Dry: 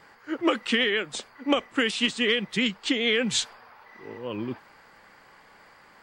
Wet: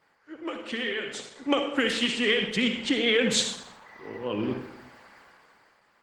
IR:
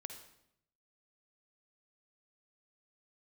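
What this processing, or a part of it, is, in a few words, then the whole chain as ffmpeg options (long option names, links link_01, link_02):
far-field microphone of a smart speaker: -filter_complex "[0:a]asettb=1/sr,asplit=3[link_01][link_02][link_03];[link_01]atrim=end=2.634[link_04];[link_02]atrim=start=2.63:end=3.07,asetpts=PTS-STARTPTS,afade=type=in:duration=0.004:curve=qsin,afade=type=out:start_time=0.436:duration=0.004:curve=qsin,equalizer=frequency=6800:width=0.75:gain=-3[link_05];[link_03]atrim=start=3.066[link_06];[link_04][link_05]acrossfade=duration=0.004:curve1=hsin:curve2=qsin[link_07];[link_07][link_06]acrossfade=duration=0.004:curve1=qsin:curve2=hsin[link_08];[1:a]atrim=start_sample=2205[link_09];[link_08][link_09]afir=irnorm=-1:irlink=0,highpass=frequency=110:poles=1,dynaudnorm=framelen=200:gausssize=11:maxgain=16dB,volume=-7dB" -ar 48000 -c:a libopus -b:a 16k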